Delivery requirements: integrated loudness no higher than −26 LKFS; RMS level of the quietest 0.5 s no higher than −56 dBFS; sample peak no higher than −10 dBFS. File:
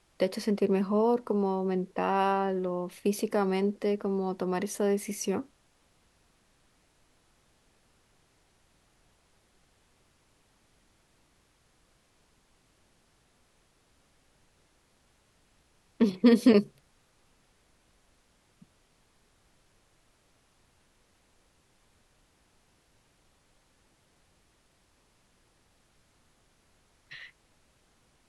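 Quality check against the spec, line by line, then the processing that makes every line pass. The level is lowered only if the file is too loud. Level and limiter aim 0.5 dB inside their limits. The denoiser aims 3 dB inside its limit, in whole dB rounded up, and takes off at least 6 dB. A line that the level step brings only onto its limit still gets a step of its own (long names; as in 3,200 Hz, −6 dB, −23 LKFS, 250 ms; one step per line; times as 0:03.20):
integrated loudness −28.0 LKFS: in spec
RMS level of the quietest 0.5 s −67 dBFS: in spec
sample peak −9.0 dBFS: out of spec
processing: brickwall limiter −10.5 dBFS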